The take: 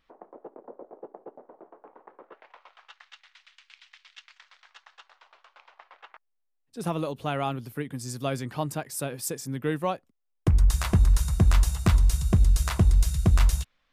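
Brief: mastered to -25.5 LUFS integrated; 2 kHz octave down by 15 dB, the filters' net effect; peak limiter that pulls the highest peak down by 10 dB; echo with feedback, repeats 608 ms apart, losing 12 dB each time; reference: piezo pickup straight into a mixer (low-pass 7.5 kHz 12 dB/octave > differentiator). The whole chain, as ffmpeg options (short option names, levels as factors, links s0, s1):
-af "equalizer=f=2000:t=o:g=-5,alimiter=limit=0.1:level=0:latency=1,lowpass=7500,aderivative,aecho=1:1:608|1216|1824:0.251|0.0628|0.0157,volume=10"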